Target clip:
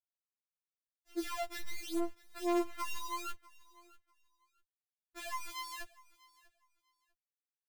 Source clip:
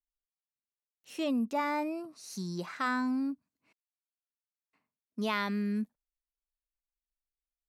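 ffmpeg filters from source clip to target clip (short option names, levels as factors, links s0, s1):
-filter_complex "[0:a]acrossover=split=3000[s0][s1];[s1]acompressor=threshold=0.00282:ratio=4:attack=1:release=60[s2];[s0][s2]amix=inputs=2:normalize=0,highshelf=f=2600:g=-8.5,asplit=2[s3][s4];[s4]asoftclip=type=tanh:threshold=0.0376,volume=0.355[s5];[s3][s5]amix=inputs=2:normalize=0,tiltshelf=f=1200:g=5,acompressor=threshold=0.0316:ratio=16,acrusher=bits=6:dc=4:mix=0:aa=0.000001,aecho=1:1:645|1290:0.0794|0.0159,afftfilt=real='re*4*eq(mod(b,16),0)':imag='im*4*eq(mod(b,16),0)':win_size=2048:overlap=0.75,volume=0.75"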